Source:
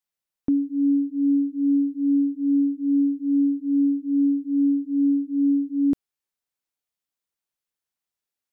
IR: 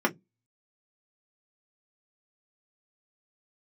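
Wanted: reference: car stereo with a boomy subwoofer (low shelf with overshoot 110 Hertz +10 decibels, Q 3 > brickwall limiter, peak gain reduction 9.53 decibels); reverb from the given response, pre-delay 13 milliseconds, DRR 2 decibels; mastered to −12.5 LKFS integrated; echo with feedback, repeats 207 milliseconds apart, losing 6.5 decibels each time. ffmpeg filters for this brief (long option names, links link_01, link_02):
-filter_complex "[0:a]aecho=1:1:207|414|621|828|1035|1242:0.473|0.222|0.105|0.0491|0.0231|0.0109,asplit=2[link_01][link_02];[1:a]atrim=start_sample=2205,adelay=13[link_03];[link_02][link_03]afir=irnorm=-1:irlink=0,volume=-14.5dB[link_04];[link_01][link_04]amix=inputs=2:normalize=0,lowshelf=frequency=110:width_type=q:width=3:gain=10,volume=12.5dB,alimiter=limit=-7dB:level=0:latency=1"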